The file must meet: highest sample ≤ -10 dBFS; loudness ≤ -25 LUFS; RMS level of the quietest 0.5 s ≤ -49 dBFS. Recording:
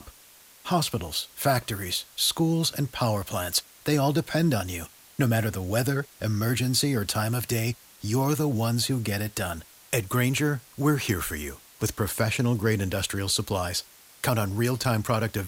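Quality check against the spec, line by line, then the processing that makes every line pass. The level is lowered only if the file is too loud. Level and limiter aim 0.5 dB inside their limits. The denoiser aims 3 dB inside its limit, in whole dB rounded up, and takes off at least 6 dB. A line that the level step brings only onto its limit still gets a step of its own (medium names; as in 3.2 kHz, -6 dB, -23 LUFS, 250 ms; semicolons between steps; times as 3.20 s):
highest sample -11.0 dBFS: pass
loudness -26.5 LUFS: pass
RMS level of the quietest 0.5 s -53 dBFS: pass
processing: none needed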